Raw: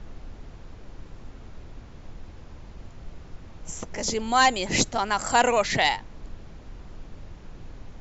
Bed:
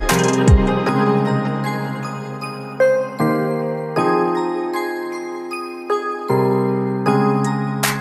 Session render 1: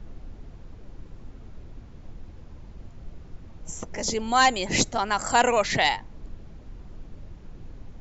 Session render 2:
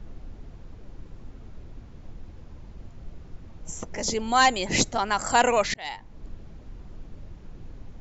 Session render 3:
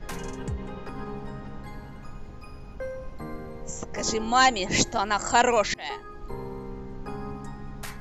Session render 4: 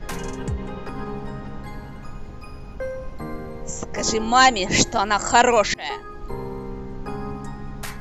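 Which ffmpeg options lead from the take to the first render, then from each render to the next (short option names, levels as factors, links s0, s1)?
-af "afftdn=nr=6:nf=-46"
-filter_complex "[0:a]asplit=2[s0][s1];[s0]atrim=end=5.74,asetpts=PTS-STARTPTS,afade=t=out:st=5.736:d=0.004:c=hsin[s2];[s1]atrim=start=5.74,asetpts=PTS-STARTPTS,afade=t=in:d=0.54[s3];[s2][s3]concat=n=2:v=0:a=1"
-filter_complex "[1:a]volume=0.0891[s0];[0:a][s0]amix=inputs=2:normalize=0"
-af "volume=1.78"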